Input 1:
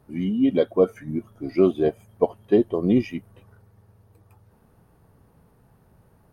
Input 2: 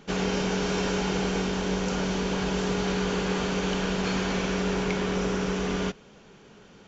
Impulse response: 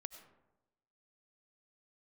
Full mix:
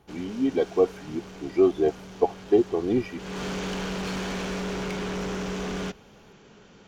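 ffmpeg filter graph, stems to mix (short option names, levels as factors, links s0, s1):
-filter_complex "[0:a]equalizer=f=820:t=o:w=0.32:g=8.5,aecho=1:1:2.6:0.65,volume=0.562[s0];[1:a]asoftclip=type=hard:threshold=0.0422,volume=0.944,afade=t=in:st=3.16:d=0.3:silence=0.237137[s1];[s0][s1]amix=inputs=2:normalize=0"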